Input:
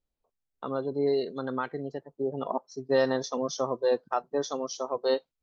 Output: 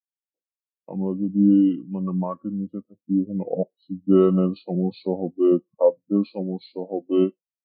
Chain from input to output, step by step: HPF 120 Hz; small resonant body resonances 290/740/1600 Hz, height 11 dB, ringing for 20 ms; varispeed -29%; spectral expander 1.5:1; gain +1.5 dB

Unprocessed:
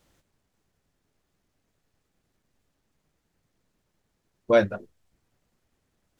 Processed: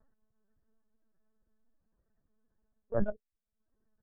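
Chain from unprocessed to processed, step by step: tracing distortion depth 0.24 ms; Chebyshev low-pass 1900 Hz, order 10; time stretch by phase-locked vocoder 0.65×; in parallel at -8.5 dB: Schmitt trigger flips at -33 dBFS; on the sum: comb 4.6 ms, depth 90%; reverse; compressor 20:1, threshold -27 dBFS, peak gain reduction 15 dB; reverse; notch 520 Hz, Q 12; upward compressor, threshold -49 dBFS; LPC vocoder at 8 kHz pitch kept; spectral expander 1.5:1

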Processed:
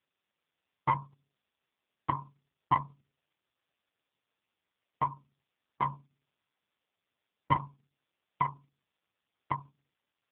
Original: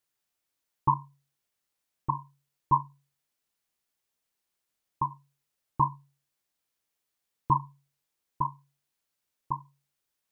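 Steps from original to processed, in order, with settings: 5.09–5.92 notch 510 Hz, Q 12; in parallel at -3 dB: compressor 8:1, threshold -31 dBFS, peak gain reduction 14 dB; on the sum: one-sided clip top -20.5 dBFS, bottom -12 dBFS; added harmonics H 4 -24 dB, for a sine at -11.5 dBFS; AMR-NB 4.75 kbps 8000 Hz

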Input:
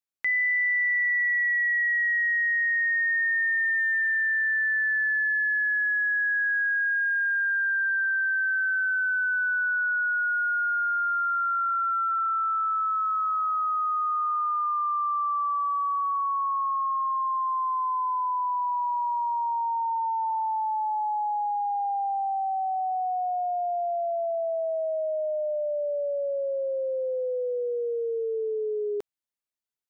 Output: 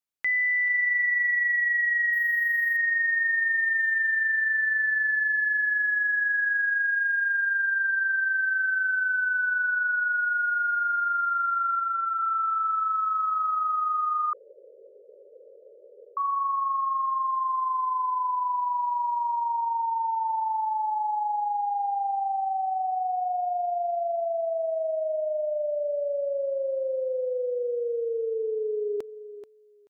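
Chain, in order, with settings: 11.79–12.22 HPF 990 Hz 6 dB/oct; feedback echo 0.433 s, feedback 16%, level -13 dB; 2.13–2.77 decimation joined by straight lines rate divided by 3×; 14.33–16.17 room tone

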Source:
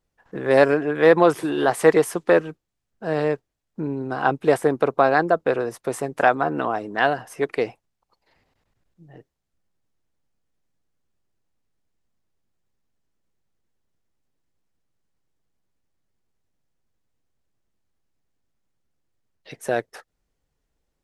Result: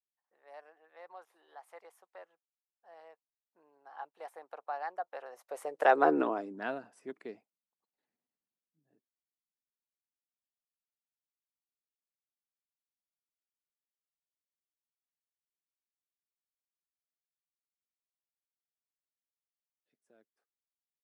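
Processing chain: Doppler pass-by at 6.07, 21 m/s, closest 2.6 m; high-pass sweep 760 Hz -> 220 Hz, 5.28–6.64; gain -4.5 dB

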